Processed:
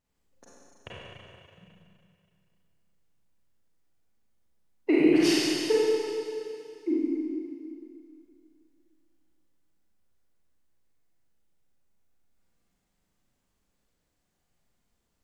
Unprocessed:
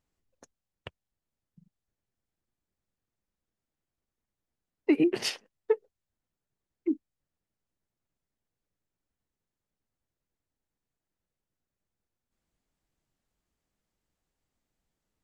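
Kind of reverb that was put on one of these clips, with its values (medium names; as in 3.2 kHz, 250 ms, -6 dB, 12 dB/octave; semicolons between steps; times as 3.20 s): Schroeder reverb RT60 2.5 s, combs from 32 ms, DRR -8 dB; trim -2 dB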